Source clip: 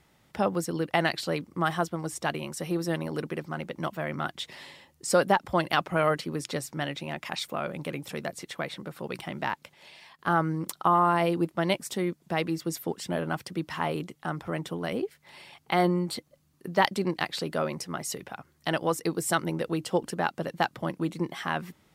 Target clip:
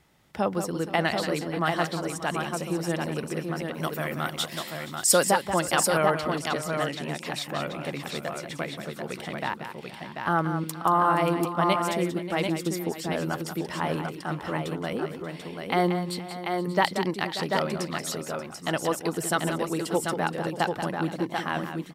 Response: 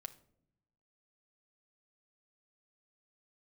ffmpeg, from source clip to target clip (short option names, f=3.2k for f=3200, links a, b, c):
-filter_complex "[0:a]asettb=1/sr,asplit=3[a][b][c];[a]atrim=end=3.744[d];[b]atrim=start=3.74:end=5.25,asetpts=PTS-STARTPTS,afade=t=in:d=0.004:c=qsin,afade=t=out:st=1.506:d=0.004:c=qsin,aemphasis=mode=production:type=75kf[e];[c]atrim=start=5.246[f];[d][e]acrossfade=d=0.004:c1=hsin:c2=qsin[g];[g][f]acrossfade=d=0.004:c1=qsin:c2=hsin,aecho=1:1:182|473|584|739:0.355|0.126|0.178|0.562"